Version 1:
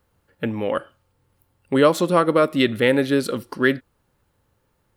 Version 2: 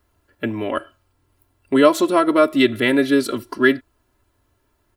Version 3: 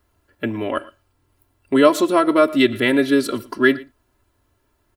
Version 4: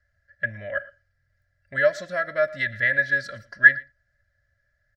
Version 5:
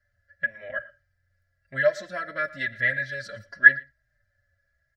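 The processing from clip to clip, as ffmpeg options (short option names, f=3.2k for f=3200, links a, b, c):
-af "aecho=1:1:3:0.83"
-af "aecho=1:1:115:0.0891"
-af "firequalizer=gain_entry='entry(180,0);entry(250,-22);entry(380,-29);entry(570,3);entry(930,-26);entry(1700,14);entry(2600,-13);entry(5200,-1);entry(10000,-24)':delay=0.05:min_phase=1,volume=-5.5dB"
-filter_complex "[0:a]asplit=2[a][b];[b]adelay=6.4,afreqshift=-0.94[c];[a][c]amix=inputs=2:normalize=1,volume=1dB"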